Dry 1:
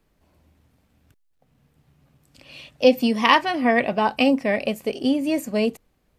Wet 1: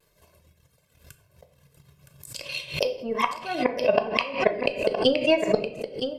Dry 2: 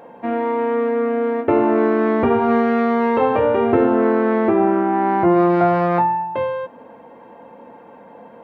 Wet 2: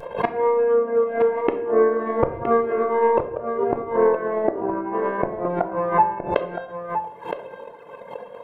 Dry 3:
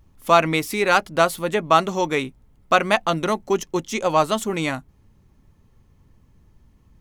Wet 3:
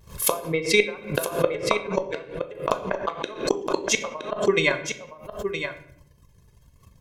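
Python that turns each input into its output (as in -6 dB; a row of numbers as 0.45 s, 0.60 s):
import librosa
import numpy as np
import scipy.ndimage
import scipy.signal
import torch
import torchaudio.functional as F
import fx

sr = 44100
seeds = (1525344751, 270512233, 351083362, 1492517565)

y = fx.env_lowpass_down(x, sr, base_hz=1100.0, full_db=-15.0)
y = fx.highpass(y, sr, hz=120.0, slope=6)
y = fx.dereverb_blind(y, sr, rt60_s=1.7)
y = fx.high_shelf(y, sr, hz=3700.0, db=9.5)
y = y + 0.77 * np.pad(y, (int(1.9 * sr / 1000.0), 0))[:len(y)]
y = fx.transient(y, sr, attack_db=10, sustain_db=-6)
y = fx.vibrato(y, sr, rate_hz=0.62, depth_cents=22.0)
y = fx.gate_flip(y, sr, shuts_db=-6.0, range_db=-25)
y = y + 10.0 ** (-8.5 / 20.0) * np.pad(y, (int(967 * sr / 1000.0), 0))[:len(y)]
y = fx.room_shoebox(y, sr, seeds[0], volume_m3=130.0, walls='mixed', distance_m=0.35)
y = fx.pre_swell(y, sr, db_per_s=140.0)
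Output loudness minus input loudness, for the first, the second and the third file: -4.5 LU, -4.5 LU, -5.0 LU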